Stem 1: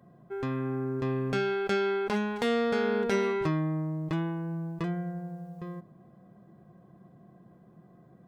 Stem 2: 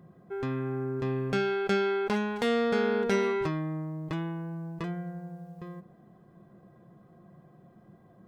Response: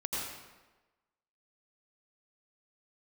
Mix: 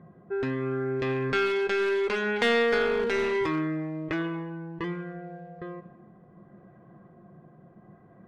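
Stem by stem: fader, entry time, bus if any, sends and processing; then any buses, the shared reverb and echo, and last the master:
−3.0 dB, 0.00 s, send −14 dB, high-pass filter 200 Hz 24 dB per octave; parametric band 2,000 Hz +12 dB 2.2 octaves; rotating-speaker cabinet horn 0.7 Hz
+2.0 dB, 0.00 s, no send, wavefolder on the positive side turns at −25.5 dBFS; brickwall limiter −25.5 dBFS, peak gain reduction 11.5 dB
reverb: on, RT60 1.2 s, pre-delay 78 ms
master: low-pass that shuts in the quiet parts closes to 1,700 Hz, open at −21 dBFS

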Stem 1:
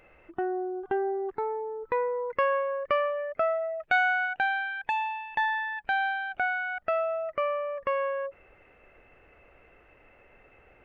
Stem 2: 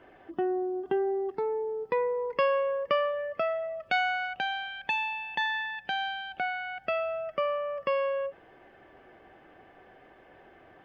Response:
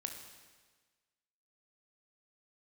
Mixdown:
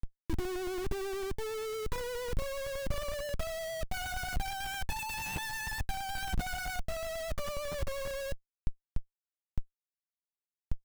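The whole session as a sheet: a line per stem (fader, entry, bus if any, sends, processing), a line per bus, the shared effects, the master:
−16.0 dB, 0.00 s, no send, low-pass filter 1,700 Hz 6 dB per octave; automatic gain control gain up to 7 dB; two-band tremolo in antiphase 1.3 Hz, depth 100%, crossover 690 Hz
−3.0 dB, 8.5 ms, polarity flipped, no send, high-pass filter 63 Hz 12 dB per octave; downward compressor 2.5 to 1, threshold −32 dBFS, peak gain reduction 8 dB; pitch vibrato 8.7 Hz 32 cents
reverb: not used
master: low-shelf EQ 240 Hz −4.5 dB; comparator with hysteresis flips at −48 dBFS; bass and treble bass +14 dB, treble +1 dB

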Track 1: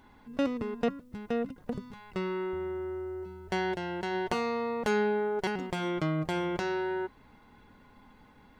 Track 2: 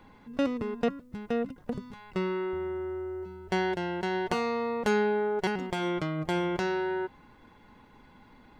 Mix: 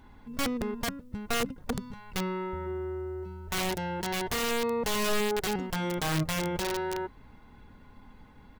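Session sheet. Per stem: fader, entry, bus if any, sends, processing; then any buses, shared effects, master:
0.0 dB, 0.00 s, no send, wrap-around overflow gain 24.5 dB
−0.5 dB, 2.2 ms, no send, high-pass filter 460 Hz 12 dB per octave; treble cut that deepens with the level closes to 870 Hz, closed at −30.5 dBFS; output level in coarse steps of 19 dB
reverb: not used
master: low-shelf EQ 130 Hz +10.5 dB

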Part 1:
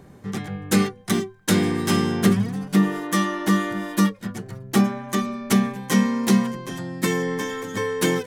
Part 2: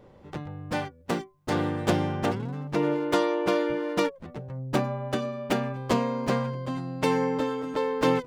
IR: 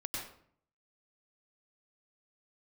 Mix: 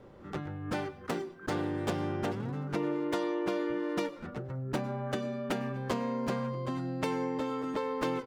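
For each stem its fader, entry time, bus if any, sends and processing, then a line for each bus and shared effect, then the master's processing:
−1.5 dB, 0.00 s, no send, brickwall limiter −15.5 dBFS, peak gain reduction 9.5 dB; pair of resonant band-passes 680 Hz, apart 1.9 octaves; background raised ahead of every attack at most 140 dB per second
−2.0 dB, 0.9 ms, send −17.5 dB, no processing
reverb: on, RT60 0.60 s, pre-delay 90 ms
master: downward compressor 3 to 1, threshold −31 dBFS, peak gain reduction 9.5 dB

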